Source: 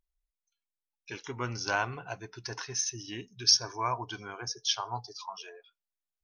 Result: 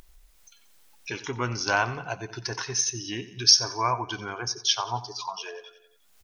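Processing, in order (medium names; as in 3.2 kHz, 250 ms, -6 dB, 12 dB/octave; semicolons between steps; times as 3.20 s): feedback delay 90 ms, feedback 43%, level -16 dB; in parallel at +2 dB: upward compressor, threshold -32 dBFS; on the sum: trim -1.5 dB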